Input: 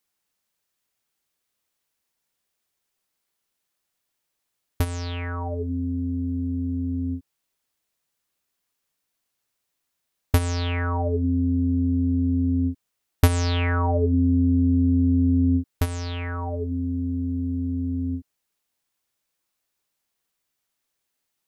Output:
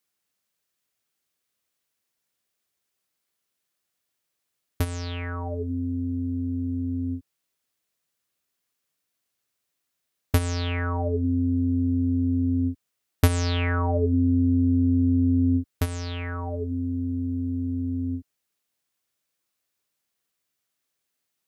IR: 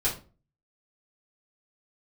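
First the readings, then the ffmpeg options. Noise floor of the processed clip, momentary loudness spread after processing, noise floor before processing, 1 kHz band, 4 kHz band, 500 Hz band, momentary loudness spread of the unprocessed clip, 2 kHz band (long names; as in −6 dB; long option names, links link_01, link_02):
−80 dBFS, 10 LU, −79 dBFS, −3.0 dB, −1.0 dB, −1.0 dB, 10 LU, −1.0 dB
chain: -af "highpass=61,equalizer=frequency=890:width=3.8:gain=-4,volume=-1dB"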